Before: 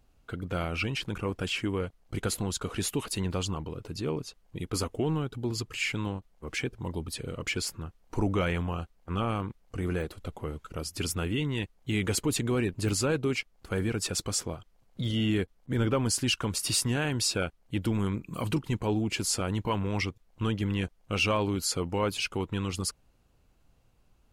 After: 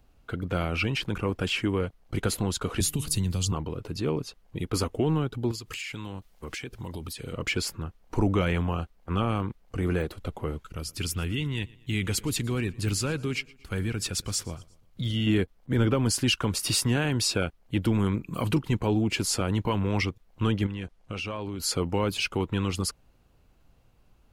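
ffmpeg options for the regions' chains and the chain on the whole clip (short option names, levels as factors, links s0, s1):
-filter_complex "[0:a]asettb=1/sr,asplit=3[s0][s1][s2];[s0]atrim=end=2.804[s3];[s1]atrim=start=2.8:end=3.52,asetpts=PTS-STARTPTS,afade=t=in:d=0.004:c=qsin,afade=t=out:st=0.716:d=0.004:c=qsin,bandreject=f=150.4:t=h:w=4,bandreject=f=300.8:t=h:w=4,bandreject=f=451.2:t=h:w=4,bandreject=f=601.6:t=h:w=4,bandreject=f=752:t=h:w=4,bandreject=f=902.4:t=h:w=4,bandreject=f=1052.8:t=h:w=4,bandreject=f=1203.2:t=h:w=4,bandreject=f=1353.6:t=h:w=4,bandreject=f=1504:t=h:w=4,bandreject=f=1654.4:t=h:w=4,bandreject=f=1804.8:t=h:w=4,bandreject=f=1955.2:t=h:w=4,bandreject=f=2105.6:t=h:w=4,bandreject=f=2256:t=h:w=4,acrossover=split=170|3300[s4][s5][s6];[s4]acompressor=threshold=0.00501:ratio=4[s7];[s5]acompressor=threshold=0.00501:ratio=4[s8];[s6]acompressor=threshold=0.02:ratio=4[s9];[s7][s8][s9]amix=inputs=3:normalize=0,bass=f=250:g=14,treble=f=4000:g=9[s10];[s2]atrim=start=3.516[s11];[s3][s10]acrossfade=d=0.004:c1=hsin:c2=qsin[s12];[s12][s11]acrossfade=d=0.004:c1=qsin:c2=hsin,asettb=1/sr,asplit=3[s13][s14][s15];[s13]atrim=end=5.514[s16];[s14]atrim=start=5.51:end=7.33,asetpts=PTS-STARTPTS,afade=t=in:d=0.004:c=qsin,afade=t=out:st=1.816:d=0.004:c=qsin,highshelf=f=2200:g=10.5,acompressor=threshold=0.0158:ratio=10:attack=3.2:release=140:knee=1:detection=peak[s17];[s15]atrim=start=7.326[s18];[s16][s17]acrossfade=d=0.004:c1=hsin:c2=qsin[s19];[s19][s18]acrossfade=d=0.004:c1=qsin:c2=hsin,asettb=1/sr,asplit=3[s20][s21][s22];[s20]atrim=end=10.634[s23];[s21]atrim=start=10.63:end=15.27,asetpts=PTS-STARTPTS,afade=t=in:d=0.004:c=qsin,afade=t=out:st=4.636:d=0.004:c=qsin,equalizer=f=570:w=0.42:g=-9,aecho=1:1:117|234|351:0.0708|0.034|0.0163,atrim=end_sample=204624[s24];[s22]atrim=start=15.266[s25];[s23][s24]acrossfade=d=0.004:c1=hsin:c2=qsin[s26];[s26][s25]acrossfade=d=0.004:c1=qsin:c2=hsin,asettb=1/sr,asplit=3[s27][s28][s29];[s27]atrim=end=20.664[s30];[s28]atrim=start=20.66:end=21.6,asetpts=PTS-STARTPTS,afade=t=in:d=0.004:c=qsin,afade=t=out:st=0.936:d=0.004:c=qsin,lowpass=11000,acompressor=threshold=0.02:ratio=8:attack=3.2:release=140:knee=1:detection=peak[s31];[s29]atrim=start=21.596[s32];[s30][s31]acrossfade=d=0.004:c1=hsin:c2=qsin[s33];[s33][s32]acrossfade=d=0.004:c1=qsin:c2=hsin,equalizer=f=7900:t=o:w=1.3:g=-4,acrossover=split=350|3000[s34][s35][s36];[s35]acompressor=threshold=0.0316:ratio=6[s37];[s34][s37][s36]amix=inputs=3:normalize=0,volume=1.58"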